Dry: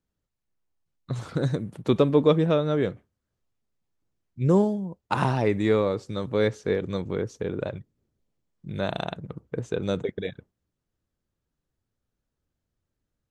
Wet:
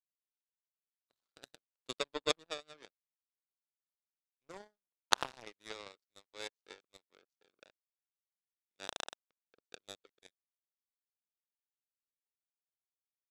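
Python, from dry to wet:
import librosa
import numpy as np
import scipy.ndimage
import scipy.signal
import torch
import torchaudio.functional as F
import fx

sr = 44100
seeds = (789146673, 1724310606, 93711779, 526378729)

y = scipy.signal.sosfilt(scipy.signal.butter(2, 520.0, 'highpass', fs=sr, output='sos'), x)
y = fx.peak_eq(y, sr, hz=4300.0, db=12.0, octaves=1.0)
y = fx.power_curve(y, sr, exponent=3.0)
y = F.gain(torch.from_numpy(y), 4.5).numpy()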